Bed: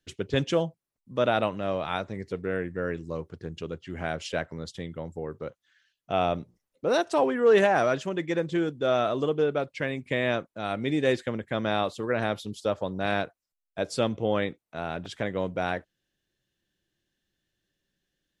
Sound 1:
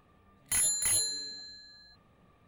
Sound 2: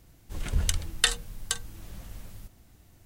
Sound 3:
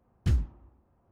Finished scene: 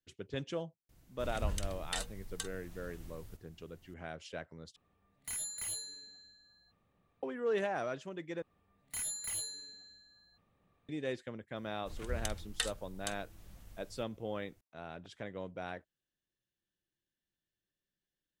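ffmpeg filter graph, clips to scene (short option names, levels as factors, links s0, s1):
-filter_complex "[2:a]asplit=2[s0][s1];[1:a]asplit=2[s2][s3];[0:a]volume=0.211[s4];[s0]alimiter=limit=0.178:level=0:latency=1:release=55[s5];[s4]asplit=3[s6][s7][s8];[s6]atrim=end=4.764[s9];[s2]atrim=end=2.47,asetpts=PTS-STARTPTS,volume=0.266[s10];[s7]atrim=start=7.226:end=8.424[s11];[s3]atrim=end=2.47,asetpts=PTS-STARTPTS,volume=0.299[s12];[s8]atrim=start=10.886[s13];[s5]atrim=end=3.05,asetpts=PTS-STARTPTS,volume=0.398,afade=t=in:d=0.004:c=hsin,afade=t=out:st=3.046:d=0.004:c=hsin,adelay=890[s14];[s1]atrim=end=3.05,asetpts=PTS-STARTPTS,volume=0.251,afade=t=in:d=0.004:c=hsin,afade=t=out:st=3.046:d=0.004:c=hsin,adelay=11560[s15];[s9][s10]acrossfade=d=0.004:c1=hsin:c2=hsin[s16];[s16][s11]acrossfade=d=0.004:c1=hsin:c2=hsin[s17];[s17][s12]acrossfade=d=0.004:c1=hsin:c2=hsin[s18];[s18][s13]acrossfade=d=0.004:c1=hsin:c2=hsin[s19];[s19][s14][s15]amix=inputs=3:normalize=0"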